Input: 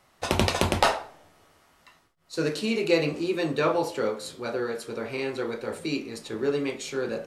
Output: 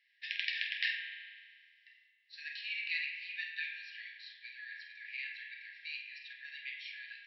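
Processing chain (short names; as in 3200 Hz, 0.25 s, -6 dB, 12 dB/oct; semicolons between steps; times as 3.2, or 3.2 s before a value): air absorption 310 m; flutter echo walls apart 8.4 m, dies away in 0.34 s; spring tank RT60 1.8 s, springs 32 ms, chirp 45 ms, DRR 4 dB; FFT band-pass 1600–5700 Hz; gain -1 dB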